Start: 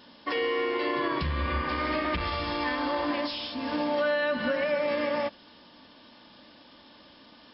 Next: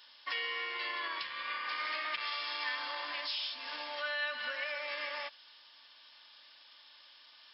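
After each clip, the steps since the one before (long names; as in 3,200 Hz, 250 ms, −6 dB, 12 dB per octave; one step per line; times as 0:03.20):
Bessel high-pass filter 2,000 Hz, order 2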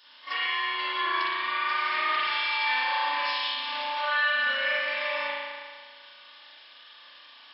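echo ahead of the sound 39 ms −15 dB
spring reverb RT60 1.7 s, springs 35 ms, chirp 25 ms, DRR −9.5 dB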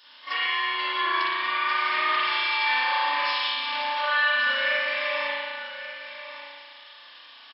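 single-tap delay 1,137 ms −13 dB
level +2.5 dB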